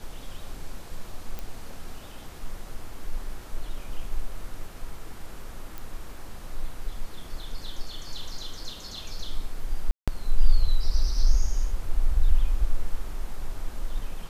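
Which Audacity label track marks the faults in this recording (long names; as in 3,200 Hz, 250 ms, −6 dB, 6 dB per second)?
1.390000	1.390000	click
5.780000	5.780000	click
9.910000	10.080000	drop-out 166 ms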